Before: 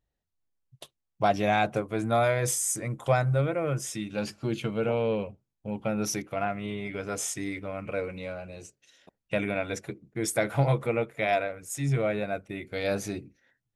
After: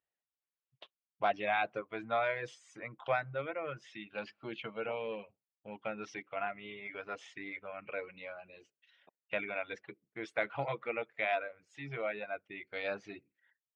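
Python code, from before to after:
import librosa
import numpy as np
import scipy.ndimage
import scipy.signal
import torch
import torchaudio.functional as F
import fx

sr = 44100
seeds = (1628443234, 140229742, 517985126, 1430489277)

y = scipy.signal.sosfilt(scipy.signal.butter(4, 3200.0, 'lowpass', fs=sr, output='sos'), x)
y = fx.dereverb_blind(y, sr, rt60_s=0.71)
y = fx.highpass(y, sr, hz=1100.0, slope=6)
y = y * librosa.db_to_amplitude(-1.5)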